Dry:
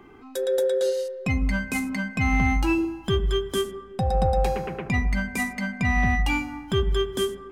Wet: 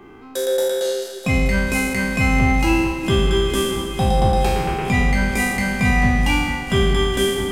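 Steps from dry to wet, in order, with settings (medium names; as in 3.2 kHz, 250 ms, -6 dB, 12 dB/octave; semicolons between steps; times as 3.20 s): spectral sustain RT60 1.35 s; echo whose repeats swap between lows and highs 219 ms, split 1.7 kHz, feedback 85%, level -11 dB; trim +3.5 dB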